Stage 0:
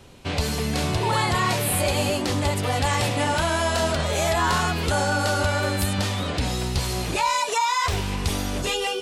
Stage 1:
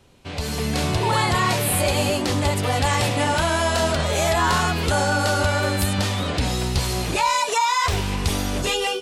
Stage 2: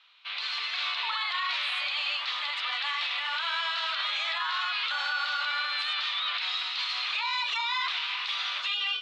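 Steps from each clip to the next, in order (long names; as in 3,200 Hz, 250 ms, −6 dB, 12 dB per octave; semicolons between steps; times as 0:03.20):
automatic gain control gain up to 11 dB; level −7 dB
elliptic band-pass filter 1,200–3,900 Hz, stop band 80 dB; parametric band 1,600 Hz −8 dB 1.2 octaves; brickwall limiter −29 dBFS, peak gain reduction 10.5 dB; level +7.5 dB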